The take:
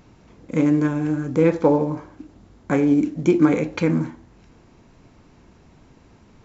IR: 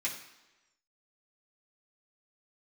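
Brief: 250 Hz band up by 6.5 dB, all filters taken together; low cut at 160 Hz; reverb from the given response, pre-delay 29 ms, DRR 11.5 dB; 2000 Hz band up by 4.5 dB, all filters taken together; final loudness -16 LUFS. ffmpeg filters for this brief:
-filter_complex "[0:a]highpass=160,equalizer=f=250:t=o:g=9,equalizer=f=2k:t=o:g=5.5,asplit=2[a][b];[1:a]atrim=start_sample=2205,adelay=29[c];[b][c]afir=irnorm=-1:irlink=0,volume=-16dB[d];[a][d]amix=inputs=2:normalize=0,volume=-1.5dB"

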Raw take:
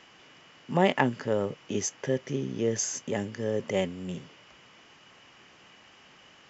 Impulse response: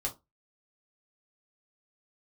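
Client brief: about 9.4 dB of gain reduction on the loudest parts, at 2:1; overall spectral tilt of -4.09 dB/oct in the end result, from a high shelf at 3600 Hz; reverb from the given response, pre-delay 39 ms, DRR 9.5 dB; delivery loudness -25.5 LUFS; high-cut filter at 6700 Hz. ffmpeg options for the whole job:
-filter_complex "[0:a]lowpass=6.7k,highshelf=f=3.6k:g=5,acompressor=threshold=-34dB:ratio=2,asplit=2[a][b];[1:a]atrim=start_sample=2205,adelay=39[c];[b][c]afir=irnorm=-1:irlink=0,volume=-12.5dB[d];[a][d]amix=inputs=2:normalize=0,volume=9.5dB"

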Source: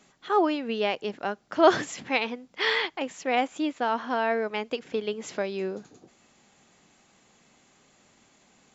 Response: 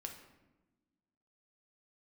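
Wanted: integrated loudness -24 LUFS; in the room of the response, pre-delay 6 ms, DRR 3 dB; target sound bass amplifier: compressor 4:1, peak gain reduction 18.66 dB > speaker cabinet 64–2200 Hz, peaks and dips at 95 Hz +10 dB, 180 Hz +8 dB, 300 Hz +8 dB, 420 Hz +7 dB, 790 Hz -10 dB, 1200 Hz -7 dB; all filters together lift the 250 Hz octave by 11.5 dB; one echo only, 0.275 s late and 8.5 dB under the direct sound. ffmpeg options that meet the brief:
-filter_complex "[0:a]equalizer=f=250:t=o:g=6,aecho=1:1:275:0.376,asplit=2[a][b];[1:a]atrim=start_sample=2205,adelay=6[c];[b][c]afir=irnorm=-1:irlink=0,volume=0dB[d];[a][d]amix=inputs=2:normalize=0,acompressor=threshold=-31dB:ratio=4,highpass=f=64:w=0.5412,highpass=f=64:w=1.3066,equalizer=f=95:t=q:w=4:g=10,equalizer=f=180:t=q:w=4:g=8,equalizer=f=300:t=q:w=4:g=8,equalizer=f=420:t=q:w=4:g=7,equalizer=f=790:t=q:w=4:g=-10,equalizer=f=1.2k:t=q:w=4:g=-7,lowpass=f=2.2k:w=0.5412,lowpass=f=2.2k:w=1.3066,volume=5.5dB"

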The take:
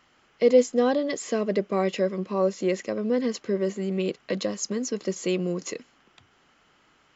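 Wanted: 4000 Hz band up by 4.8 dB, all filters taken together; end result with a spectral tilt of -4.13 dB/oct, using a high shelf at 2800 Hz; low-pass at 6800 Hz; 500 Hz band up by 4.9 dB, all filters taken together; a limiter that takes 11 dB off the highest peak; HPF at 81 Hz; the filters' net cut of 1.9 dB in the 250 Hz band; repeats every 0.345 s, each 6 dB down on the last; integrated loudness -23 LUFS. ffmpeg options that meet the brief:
-af "highpass=81,lowpass=6.8k,equalizer=f=250:t=o:g=-5,equalizer=f=500:t=o:g=6.5,highshelf=f=2.8k:g=4,equalizer=f=4k:t=o:g=3.5,alimiter=limit=-14dB:level=0:latency=1,aecho=1:1:345|690|1035|1380|1725|2070:0.501|0.251|0.125|0.0626|0.0313|0.0157,volume=1.5dB"

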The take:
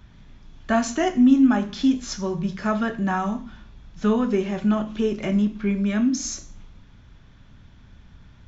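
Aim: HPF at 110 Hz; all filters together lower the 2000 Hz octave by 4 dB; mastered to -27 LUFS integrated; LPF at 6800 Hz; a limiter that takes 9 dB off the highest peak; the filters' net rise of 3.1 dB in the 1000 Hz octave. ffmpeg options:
-af "highpass=110,lowpass=6.8k,equalizer=f=1k:t=o:g=6.5,equalizer=f=2k:t=o:g=-8.5,volume=-2dB,alimiter=limit=-18dB:level=0:latency=1"

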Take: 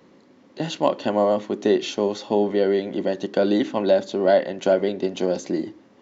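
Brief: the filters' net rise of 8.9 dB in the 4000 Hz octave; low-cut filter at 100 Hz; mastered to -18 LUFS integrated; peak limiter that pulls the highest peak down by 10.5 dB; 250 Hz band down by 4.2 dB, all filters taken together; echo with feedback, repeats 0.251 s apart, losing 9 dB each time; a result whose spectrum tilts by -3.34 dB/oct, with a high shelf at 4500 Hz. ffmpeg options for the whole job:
-af "highpass=100,equalizer=f=250:t=o:g=-6,equalizer=f=4k:t=o:g=7.5,highshelf=f=4.5k:g=7,alimiter=limit=-15dB:level=0:latency=1,aecho=1:1:251|502|753|1004:0.355|0.124|0.0435|0.0152,volume=8dB"

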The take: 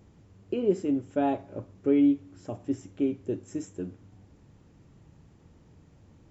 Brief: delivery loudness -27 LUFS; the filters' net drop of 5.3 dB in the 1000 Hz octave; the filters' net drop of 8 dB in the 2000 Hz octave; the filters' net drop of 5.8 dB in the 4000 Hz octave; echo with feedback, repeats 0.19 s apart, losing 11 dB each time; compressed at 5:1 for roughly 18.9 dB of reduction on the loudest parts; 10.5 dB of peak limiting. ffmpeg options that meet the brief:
-af "equalizer=f=1k:t=o:g=-7.5,equalizer=f=2k:t=o:g=-7,equalizer=f=4k:t=o:g=-4.5,acompressor=threshold=-41dB:ratio=5,alimiter=level_in=14dB:limit=-24dB:level=0:latency=1,volume=-14dB,aecho=1:1:190|380|570:0.282|0.0789|0.0221,volume=23dB"

